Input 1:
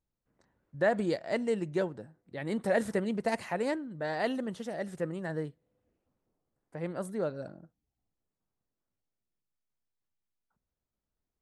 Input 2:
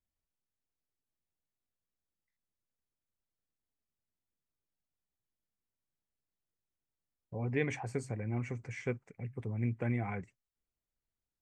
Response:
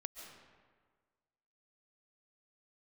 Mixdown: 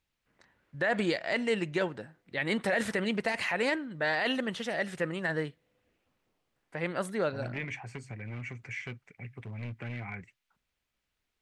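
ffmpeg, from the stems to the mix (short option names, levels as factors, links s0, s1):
-filter_complex "[0:a]volume=1.06[s0];[1:a]bandreject=f=490:w=12,acrossover=split=250[s1][s2];[s2]acompressor=threshold=0.00355:ratio=2[s3];[s1][s3]amix=inputs=2:normalize=0,volume=42.2,asoftclip=hard,volume=0.0237,volume=0.708[s4];[s0][s4]amix=inputs=2:normalize=0,equalizer=f=2500:t=o:w=2.2:g=14.5,alimiter=limit=0.112:level=0:latency=1:release=31"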